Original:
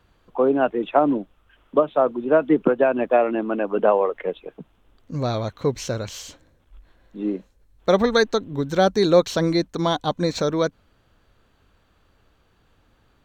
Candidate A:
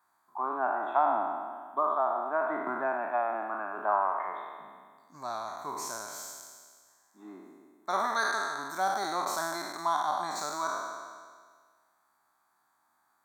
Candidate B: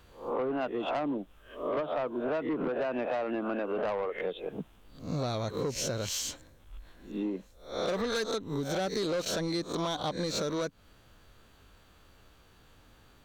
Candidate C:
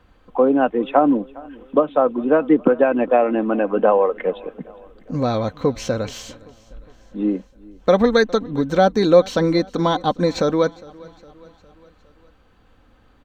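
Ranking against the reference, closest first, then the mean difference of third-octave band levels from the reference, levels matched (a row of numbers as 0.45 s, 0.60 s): C, B, A; 2.5 dB, 7.5 dB, 10.5 dB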